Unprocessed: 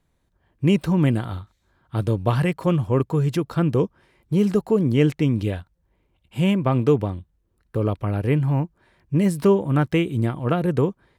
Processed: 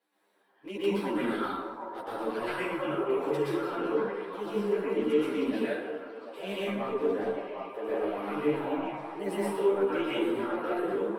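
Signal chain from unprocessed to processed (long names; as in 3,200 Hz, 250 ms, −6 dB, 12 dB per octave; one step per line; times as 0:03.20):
high-pass filter 320 Hz 24 dB per octave
parametric band 6,800 Hz −11.5 dB 0.32 octaves
reversed playback
downward compressor 5 to 1, threshold −34 dBFS, peak gain reduction 17.5 dB
reversed playback
soft clipping −24.5 dBFS, distortion −24 dB
flanger swept by the level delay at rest 10.4 ms, full sweep at −31.5 dBFS
on a send: echo through a band-pass that steps 750 ms, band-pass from 770 Hz, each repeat 0.7 octaves, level −2 dB
on the sum: dense smooth reverb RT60 1.4 s, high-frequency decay 0.45×, pre-delay 105 ms, DRR −9 dB
string-ensemble chorus
level +3.5 dB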